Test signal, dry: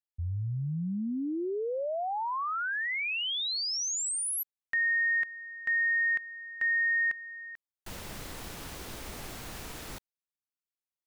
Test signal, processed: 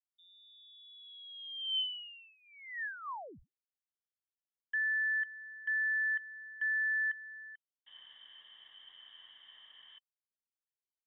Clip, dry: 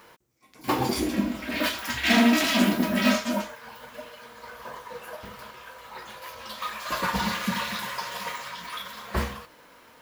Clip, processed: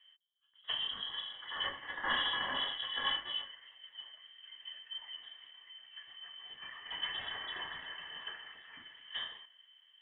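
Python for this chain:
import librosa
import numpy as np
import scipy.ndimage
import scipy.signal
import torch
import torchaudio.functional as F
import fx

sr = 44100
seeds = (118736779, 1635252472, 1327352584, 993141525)

y = fx.vowel_filter(x, sr, vowel='e')
y = fx.env_lowpass(y, sr, base_hz=1100.0, full_db=-35.0)
y = fx.freq_invert(y, sr, carrier_hz=3600)
y = y * librosa.db_to_amplitude(1.0)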